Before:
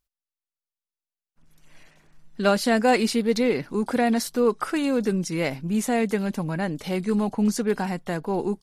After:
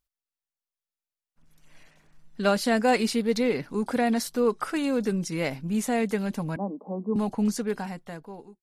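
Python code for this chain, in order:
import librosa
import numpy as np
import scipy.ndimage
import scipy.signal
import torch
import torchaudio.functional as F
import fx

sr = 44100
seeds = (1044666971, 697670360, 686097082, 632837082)

y = fx.fade_out_tail(x, sr, length_s=1.22)
y = fx.cheby1_bandpass(y, sr, low_hz=190.0, high_hz=1100.0, order=5, at=(6.56, 7.16))
y = fx.notch(y, sr, hz=360.0, q=12.0)
y = y * 10.0 ** (-2.5 / 20.0)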